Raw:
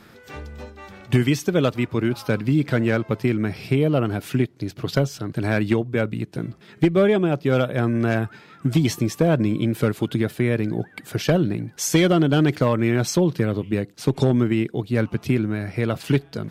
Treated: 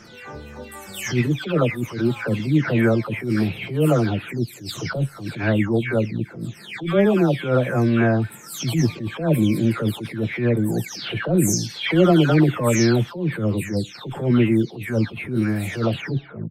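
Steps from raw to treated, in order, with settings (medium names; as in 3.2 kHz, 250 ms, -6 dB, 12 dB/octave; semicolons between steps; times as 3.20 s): delay that grows with frequency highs early, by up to 408 ms; attacks held to a fixed rise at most 120 dB/s; trim +3.5 dB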